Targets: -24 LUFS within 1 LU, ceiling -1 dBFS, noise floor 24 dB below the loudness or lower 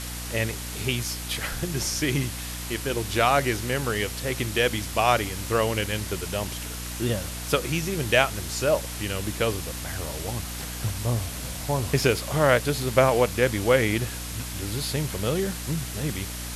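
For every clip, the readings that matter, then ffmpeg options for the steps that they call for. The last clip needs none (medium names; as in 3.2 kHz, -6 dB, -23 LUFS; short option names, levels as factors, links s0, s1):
hum 60 Hz; highest harmonic 300 Hz; hum level -34 dBFS; noise floor -34 dBFS; noise floor target -50 dBFS; loudness -26.0 LUFS; peak level -4.0 dBFS; loudness target -24.0 LUFS
-> -af "bandreject=f=60:t=h:w=4,bandreject=f=120:t=h:w=4,bandreject=f=180:t=h:w=4,bandreject=f=240:t=h:w=4,bandreject=f=300:t=h:w=4"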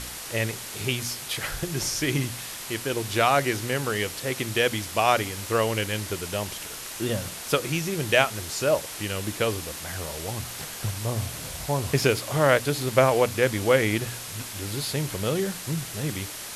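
hum not found; noise floor -37 dBFS; noise floor target -50 dBFS
-> -af "afftdn=nr=13:nf=-37"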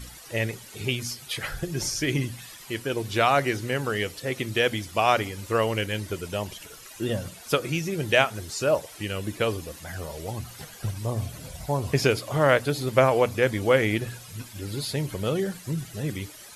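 noise floor -45 dBFS; noise floor target -51 dBFS
-> -af "afftdn=nr=6:nf=-45"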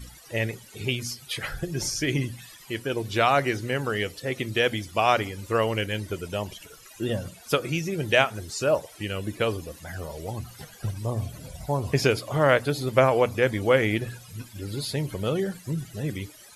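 noise floor -49 dBFS; noise floor target -51 dBFS
-> -af "afftdn=nr=6:nf=-49"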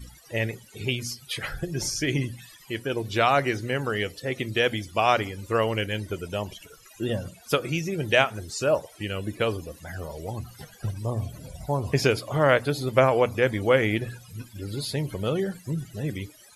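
noise floor -52 dBFS; loudness -26.5 LUFS; peak level -4.0 dBFS; loudness target -24.0 LUFS
-> -af "volume=1.33"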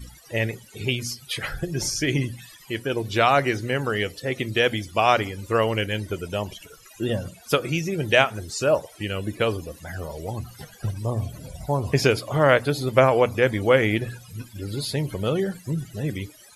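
loudness -24.0 LUFS; peak level -1.5 dBFS; noise floor -49 dBFS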